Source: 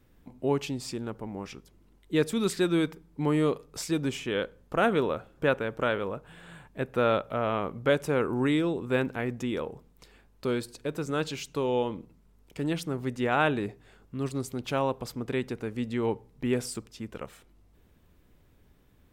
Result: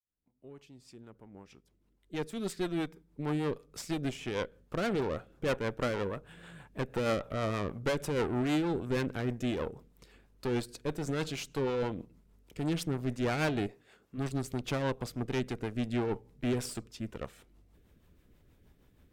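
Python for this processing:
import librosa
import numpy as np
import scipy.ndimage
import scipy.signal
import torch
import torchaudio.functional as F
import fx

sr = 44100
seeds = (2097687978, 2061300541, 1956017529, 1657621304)

y = fx.fade_in_head(x, sr, length_s=6.02)
y = fx.highpass(y, sr, hz=370.0, slope=6, at=(13.66, 14.17), fade=0.02)
y = fx.tube_stage(y, sr, drive_db=30.0, bias=0.8)
y = fx.rotary(y, sr, hz=6.3)
y = y * librosa.db_to_amplitude(5.0)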